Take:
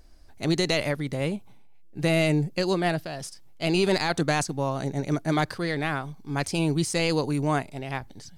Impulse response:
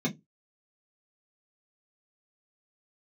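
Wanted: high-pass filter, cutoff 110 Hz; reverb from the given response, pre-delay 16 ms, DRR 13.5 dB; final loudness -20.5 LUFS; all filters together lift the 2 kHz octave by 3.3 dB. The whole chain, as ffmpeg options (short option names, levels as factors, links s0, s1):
-filter_complex "[0:a]highpass=110,equalizer=f=2000:t=o:g=4,asplit=2[s0][s1];[1:a]atrim=start_sample=2205,adelay=16[s2];[s1][s2]afir=irnorm=-1:irlink=0,volume=0.1[s3];[s0][s3]amix=inputs=2:normalize=0,volume=1.68"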